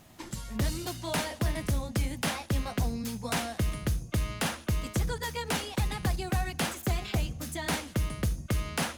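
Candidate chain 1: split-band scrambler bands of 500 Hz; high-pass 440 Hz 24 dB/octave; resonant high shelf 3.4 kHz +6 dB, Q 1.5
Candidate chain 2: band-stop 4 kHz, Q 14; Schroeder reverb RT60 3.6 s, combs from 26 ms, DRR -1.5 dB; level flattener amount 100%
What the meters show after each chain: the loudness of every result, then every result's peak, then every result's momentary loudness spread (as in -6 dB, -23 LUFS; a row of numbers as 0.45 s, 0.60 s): -30.0 LUFS, -23.5 LUFS; -13.5 dBFS, -11.5 dBFS; 3 LU, 2 LU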